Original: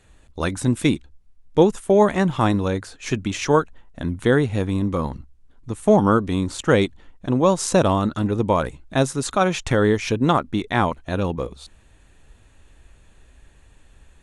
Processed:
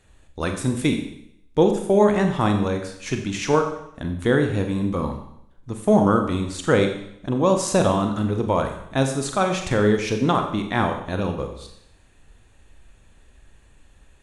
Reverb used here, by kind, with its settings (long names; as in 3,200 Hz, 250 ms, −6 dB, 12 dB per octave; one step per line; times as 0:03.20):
four-comb reverb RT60 0.73 s, combs from 30 ms, DRR 4.5 dB
level −2.5 dB